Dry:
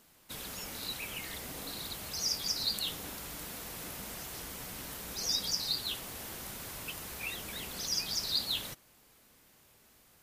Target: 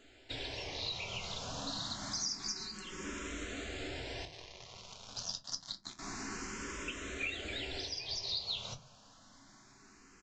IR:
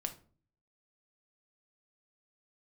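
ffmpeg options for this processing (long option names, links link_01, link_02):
-filter_complex "[0:a]asettb=1/sr,asplit=3[link_01][link_02][link_03];[link_01]atrim=end=2.484[link_04];[link_02]atrim=start=2.48:end=3.05,asetpts=PTS-STARTPTS,afade=type=in:duration=0.004:curve=qsin,afade=type=out:start_time=0.566:duration=0.004:curve=qsin,aecho=1:1:5.4:0.65,atrim=end_sample=25137[link_05];[link_03]atrim=start=3.046[link_06];[link_04][link_05]acrossfade=duration=0.004:curve1=hsin:curve2=qsin[link_07];[link_07][link_06]acrossfade=duration=0.004:curve1=qsin:curve2=hsin,acompressor=threshold=-40dB:ratio=16,asettb=1/sr,asplit=3[link_08][link_09][link_10];[link_08]atrim=end=4.254[link_11];[link_09]atrim=start=4.25:end=5.99,asetpts=PTS-STARTPTS,afade=type=in:duration=0.004:curve=qsin,afade=type=out:start_time=1.736:duration=0.004:curve=qsin,acrusher=bits=5:mix=0:aa=0.5[link_12];[link_10]atrim=start=5.986[link_13];[link_11][link_12]acrossfade=duration=0.004:curve1=hsin:curve2=qsin[link_14];[link_14][link_13]acrossfade=duration=0.004:curve1=qsin:curve2=hsin,aresample=16000,aresample=44100[link_15];[1:a]atrim=start_sample=2205,asetrate=83790,aresample=44100[link_16];[link_15][link_16]afir=irnorm=-1:irlink=0,asplit=2[link_17][link_18];[link_18]afreqshift=0.27[link_19];[link_17][link_19]amix=inputs=2:normalize=1,volume=13.5dB"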